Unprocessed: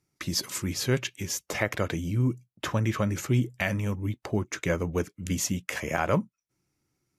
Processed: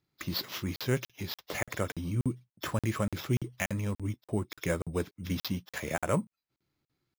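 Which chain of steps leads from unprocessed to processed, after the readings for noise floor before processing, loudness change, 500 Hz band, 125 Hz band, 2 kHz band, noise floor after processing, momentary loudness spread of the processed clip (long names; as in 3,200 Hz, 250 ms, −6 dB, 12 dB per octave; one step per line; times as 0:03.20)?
−85 dBFS, −4.5 dB, −4.0 dB, −4.5 dB, −5.5 dB, below −85 dBFS, 5 LU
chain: hearing-aid frequency compression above 3,300 Hz 1.5 to 1
decimation without filtering 5×
regular buffer underruns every 0.29 s, samples 2,048, zero, from 0:00.76
level −3.5 dB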